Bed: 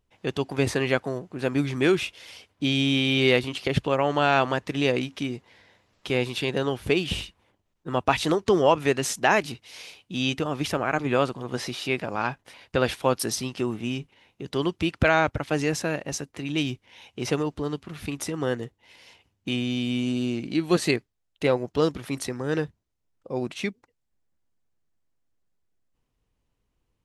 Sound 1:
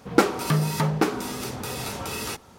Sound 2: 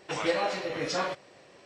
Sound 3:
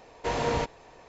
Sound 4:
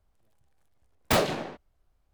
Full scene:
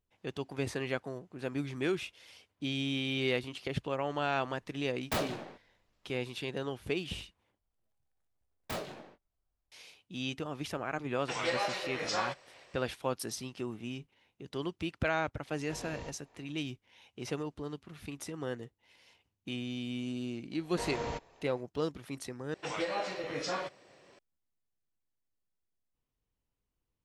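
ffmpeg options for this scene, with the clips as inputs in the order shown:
-filter_complex "[4:a]asplit=2[s0][s1];[2:a]asplit=2[s2][s3];[3:a]asplit=2[s4][s5];[0:a]volume=0.282[s6];[s1]asplit=2[s7][s8];[s8]adelay=22,volume=0.316[s9];[s7][s9]amix=inputs=2:normalize=0[s10];[s2]equalizer=f=220:t=o:w=1.9:g=-13[s11];[s4]acrossover=split=450|3000[s12][s13][s14];[s13]acompressor=threshold=0.0251:ratio=6:attack=3.2:release=140:knee=2.83:detection=peak[s15];[s12][s15][s14]amix=inputs=3:normalize=0[s16];[s3]alimiter=limit=0.119:level=0:latency=1:release=136[s17];[s6]asplit=3[s18][s19][s20];[s18]atrim=end=7.594[s21];[s10]atrim=end=2.13,asetpts=PTS-STARTPTS,volume=0.168[s22];[s19]atrim=start=9.716:end=22.544[s23];[s17]atrim=end=1.65,asetpts=PTS-STARTPTS,volume=0.562[s24];[s20]atrim=start=24.186[s25];[s0]atrim=end=2.13,asetpts=PTS-STARTPTS,volume=0.335,afade=t=in:d=0.004:c=hsin,afade=t=out:st=2.126:d=0.004:c=hsin,adelay=176841S[s26];[s11]atrim=end=1.65,asetpts=PTS-STARTPTS,volume=0.841,afade=t=in:d=0.004:c=hsin,afade=t=out:st=1.646:d=0.004:c=hsin,adelay=11190[s27];[s16]atrim=end=1.08,asetpts=PTS-STARTPTS,volume=0.178,afade=t=in:d=0.004:c=hsin,afade=t=out:st=1.076:d=0.004:c=hsin,adelay=15450[s28];[s5]atrim=end=1.08,asetpts=PTS-STARTPTS,volume=0.335,afade=t=in:d=0.004:c=hsin,afade=t=out:st=1.076:d=0.004:c=hsin,adelay=20530[s29];[s21][s22]acrossfade=d=0.004:c1=hsin:c2=hsin[s30];[s30][s23]acrossfade=d=0.004:c1=hsin:c2=hsin[s31];[s31][s24]acrossfade=d=0.004:c1=hsin:c2=hsin[s32];[s32][s25]acrossfade=d=0.004:c1=hsin:c2=hsin[s33];[s33][s26][s27][s28][s29]amix=inputs=5:normalize=0"

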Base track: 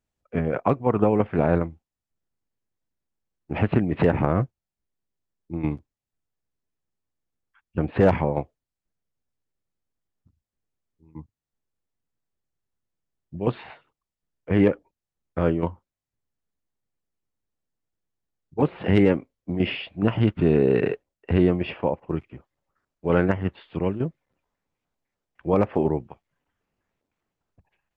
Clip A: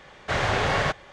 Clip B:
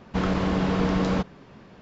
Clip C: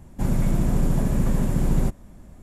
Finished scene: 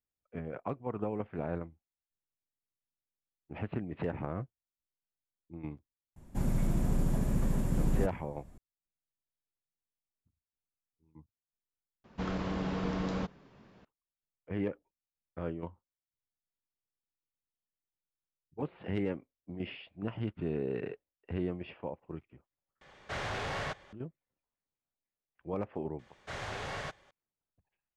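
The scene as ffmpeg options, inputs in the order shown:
-filter_complex "[1:a]asplit=2[s0][s1];[0:a]volume=0.168[s2];[s0]asoftclip=type=tanh:threshold=0.0794[s3];[s1]highshelf=f=8300:g=10[s4];[s2]asplit=3[s5][s6][s7];[s5]atrim=end=12.044[s8];[2:a]atrim=end=1.81,asetpts=PTS-STARTPTS,volume=0.299[s9];[s6]atrim=start=13.846:end=22.814[s10];[s3]atrim=end=1.12,asetpts=PTS-STARTPTS,volume=0.335[s11];[s7]atrim=start=23.926[s12];[3:a]atrim=end=2.42,asetpts=PTS-STARTPTS,volume=0.376,afade=t=in:d=0.004:c=hsin,afade=t=out:st=2.416:d=0.004:c=hsin,adelay=6160[s13];[s4]atrim=end=1.12,asetpts=PTS-STARTPTS,volume=0.158,afade=t=in:d=0.004:c=hsin,afade=t=out:st=1.116:d=0.004:c=hsin,adelay=25990[s14];[s8][s9]acrossfade=d=0.004:c1=hsin:c2=hsin[s15];[s15][s10]acrossfade=d=0.004:c1=hsin:c2=hsin[s16];[s16][s11]acrossfade=d=0.004:c1=hsin:c2=hsin[s17];[s17][s12]acrossfade=d=0.004:c1=hsin:c2=hsin[s18];[s18][s13][s14]amix=inputs=3:normalize=0"

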